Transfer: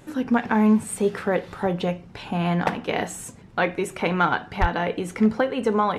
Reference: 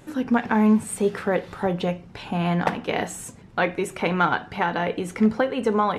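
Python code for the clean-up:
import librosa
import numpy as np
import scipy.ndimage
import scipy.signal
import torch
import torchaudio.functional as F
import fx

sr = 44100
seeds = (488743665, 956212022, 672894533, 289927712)

y = fx.fix_declip(x, sr, threshold_db=-8.5)
y = fx.highpass(y, sr, hz=140.0, slope=24, at=(4.6, 4.72), fade=0.02)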